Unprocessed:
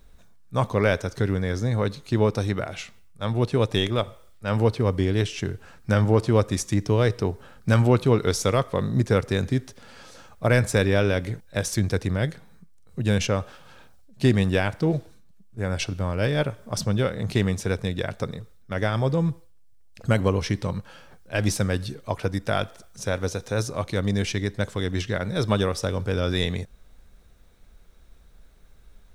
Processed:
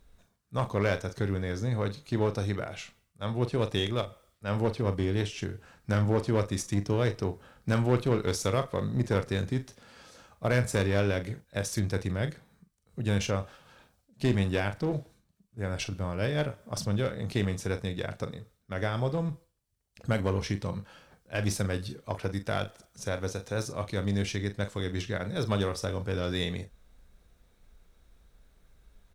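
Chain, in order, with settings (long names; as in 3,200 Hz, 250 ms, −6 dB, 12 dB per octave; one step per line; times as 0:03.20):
asymmetric clip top −22 dBFS, bottom −9 dBFS
double-tracking delay 40 ms −11 dB
level −6 dB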